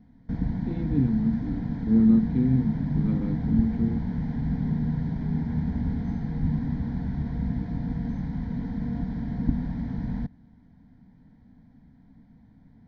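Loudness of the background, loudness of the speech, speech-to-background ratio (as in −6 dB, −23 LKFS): −29.5 LKFS, −25.5 LKFS, 4.0 dB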